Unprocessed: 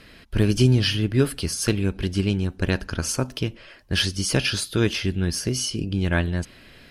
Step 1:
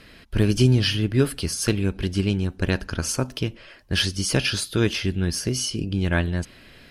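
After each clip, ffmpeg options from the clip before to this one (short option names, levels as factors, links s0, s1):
-af anull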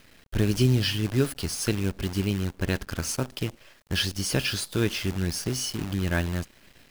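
-af "acrusher=bits=6:dc=4:mix=0:aa=0.000001,volume=0.631"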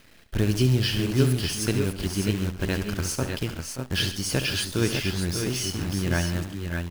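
-af "aecho=1:1:69|134|578|602:0.282|0.178|0.237|0.501"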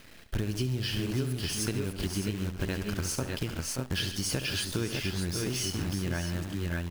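-af "acompressor=threshold=0.0316:ratio=6,volume=1.26"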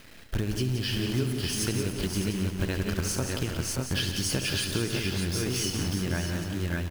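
-af "aecho=1:1:177|354|531|708:0.422|0.164|0.0641|0.025,volume=1.26"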